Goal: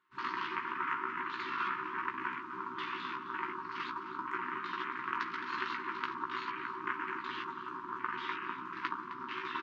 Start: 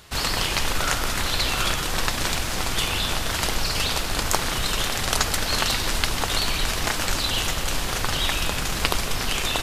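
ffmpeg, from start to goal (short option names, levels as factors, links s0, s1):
-filter_complex "[0:a]afwtdn=0.0447,afftfilt=real='re*lt(hypot(re,im),0.282)':imag='im*lt(hypot(re,im),0.282)':win_size=1024:overlap=0.75,asuperpass=centerf=660:order=4:qfactor=0.57,lowshelf=f=400:g=-8.5,areverse,acompressor=mode=upward:threshold=0.00631:ratio=2.5,areverse,afftfilt=real='re*(1-between(b*sr/4096,390,900))':imag='im*(1-between(b*sr/4096,390,900))':win_size=4096:overlap=0.75,asplit=2[s0][s1];[s1]adelay=16,volume=0.562[s2];[s0][s2]amix=inputs=2:normalize=0,asplit=2[s3][s4];[s4]aecho=0:1:261:0.2[s5];[s3][s5]amix=inputs=2:normalize=0,volume=0.708"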